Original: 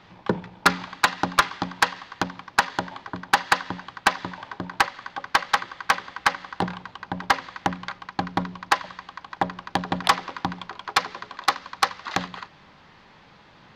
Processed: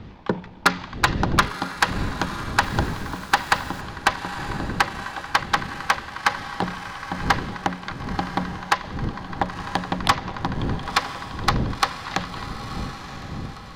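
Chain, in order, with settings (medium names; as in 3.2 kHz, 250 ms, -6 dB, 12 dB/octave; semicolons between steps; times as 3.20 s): wind noise 200 Hz -32 dBFS; echo that smears into a reverb 999 ms, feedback 45%, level -10.5 dB; 2.63–3.81 s: small samples zeroed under -38.5 dBFS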